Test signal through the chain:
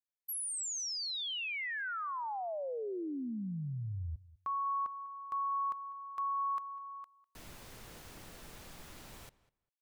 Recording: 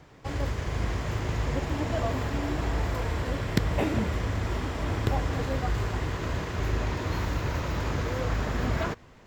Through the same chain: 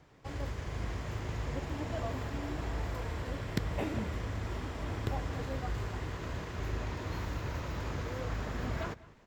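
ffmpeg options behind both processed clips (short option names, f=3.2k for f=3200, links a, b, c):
-filter_complex "[0:a]asplit=2[a][b];[b]adelay=200,lowpass=f=3.4k:p=1,volume=-19.5dB,asplit=2[c][d];[d]adelay=200,lowpass=f=3.4k:p=1,volume=0.15[e];[a][c][e]amix=inputs=3:normalize=0,volume=-8dB"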